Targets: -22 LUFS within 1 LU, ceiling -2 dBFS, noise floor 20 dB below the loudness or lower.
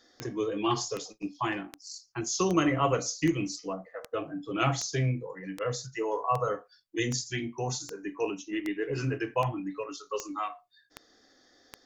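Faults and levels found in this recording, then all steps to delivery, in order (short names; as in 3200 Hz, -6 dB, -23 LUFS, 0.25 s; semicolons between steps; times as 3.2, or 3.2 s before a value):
clicks 16; loudness -31.5 LUFS; peak -12.0 dBFS; loudness target -22.0 LUFS
-> de-click; gain +9.5 dB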